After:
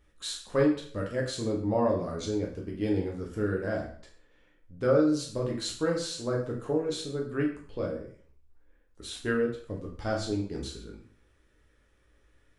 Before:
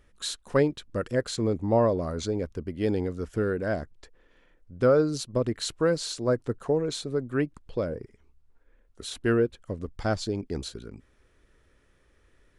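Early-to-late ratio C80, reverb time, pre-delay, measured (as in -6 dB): 10.0 dB, 0.50 s, 5 ms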